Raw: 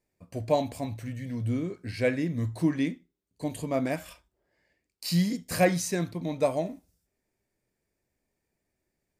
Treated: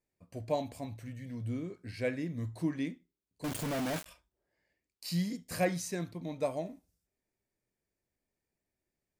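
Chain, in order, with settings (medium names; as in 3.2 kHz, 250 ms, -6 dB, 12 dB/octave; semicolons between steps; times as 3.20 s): 3.44–4.06 s: companded quantiser 2-bit; trim -7.5 dB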